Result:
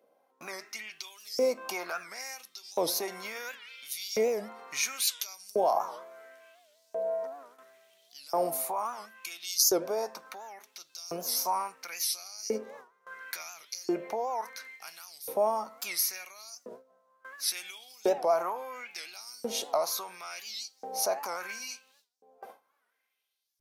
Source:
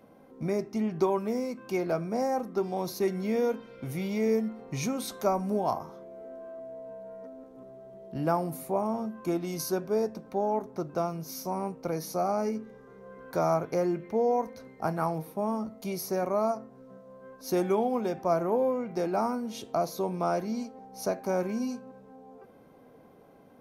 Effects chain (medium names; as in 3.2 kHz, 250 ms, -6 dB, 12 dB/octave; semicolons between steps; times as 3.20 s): peak limiter -24.5 dBFS, peak gain reduction 10 dB; high-pass 88 Hz 12 dB/octave; treble shelf 2.1 kHz +11 dB; gate with hold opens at -39 dBFS; bass shelf 340 Hz +12 dB; in parallel at -2 dB: compression, threshold -34 dBFS, peak gain reduction 13 dB; on the sum: LFO high-pass saw up 0.72 Hz 470–5600 Hz; warped record 78 rpm, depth 160 cents; trim -2.5 dB